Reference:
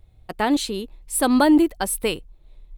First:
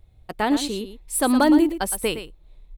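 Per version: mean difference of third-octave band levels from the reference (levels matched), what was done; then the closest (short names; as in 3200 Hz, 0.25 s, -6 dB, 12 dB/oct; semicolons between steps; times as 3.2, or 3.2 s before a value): 3.0 dB: hard clip -8.5 dBFS, distortion -36 dB; on a send: echo 0.114 s -11 dB; on the sum: gain -1 dB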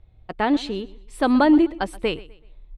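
4.5 dB: LPF 3400 Hz 12 dB/oct; on a send: feedback echo 0.126 s, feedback 34%, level -20 dB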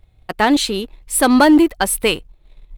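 1.5 dB: bell 2000 Hz +5 dB 2.3 oct; sample leveller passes 1; gain +1.5 dB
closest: third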